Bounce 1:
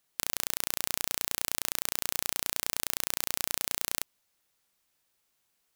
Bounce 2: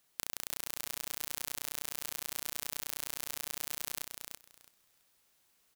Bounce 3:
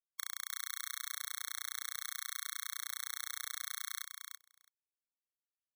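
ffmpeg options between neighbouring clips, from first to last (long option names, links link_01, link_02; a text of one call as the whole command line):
ffmpeg -i in.wav -filter_complex "[0:a]acompressor=threshold=-35dB:ratio=6,asplit=2[link_01][link_02];[link_02]aecho=0:1:331|662|993:0.562|0.09|0.0144[link_03];[link_01][link_03]amix=inputs=2:normalize=0,volume=3dB" out.wav
ffmpeg -i in.wav -af "aeval=exprs='sgn(val(0))*max(abs(val(0))-0.0141,0)':channel_layout=same,highshelf=frequency=8700:gain=-4.5,afftfilt=real='re*eq(mod(floor(b*sr/1024/1100),2),1)':imag='im*eq(mod(floor(b*sr/1024/1100),2),1)':win_size=1024:overlap=0.75,volume=4dB" out.wav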